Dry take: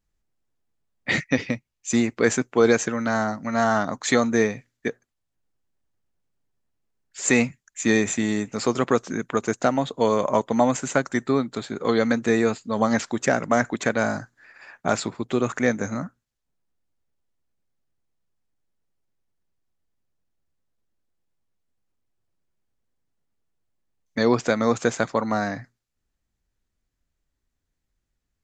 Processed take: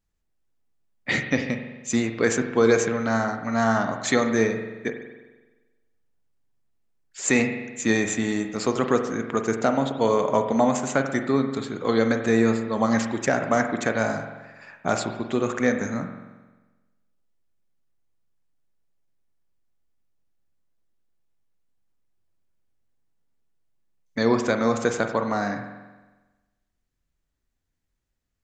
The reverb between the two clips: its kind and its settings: spring tank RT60 1.2 s, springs 44 ms, chirp 80 ms, DRR 6 dB; gain -1.5 dB

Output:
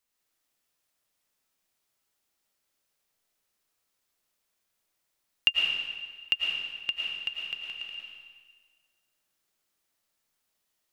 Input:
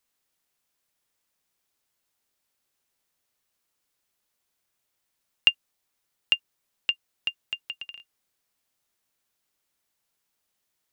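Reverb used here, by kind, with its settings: digital reverb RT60 1.5 s, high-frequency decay 0.95×, pre-delay 70 ms, DRR -2 dB; gain -4 dB

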